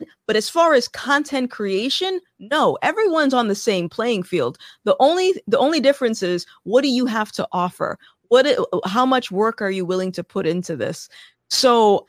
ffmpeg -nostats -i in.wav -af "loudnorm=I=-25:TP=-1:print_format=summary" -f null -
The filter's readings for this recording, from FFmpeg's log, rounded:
Input Integrated:    -19.4 LUFS
Input True Peak:      -3.1 dBTP
Input LRA:             1.3 LU
Input Threshold:     -29.7 LUFS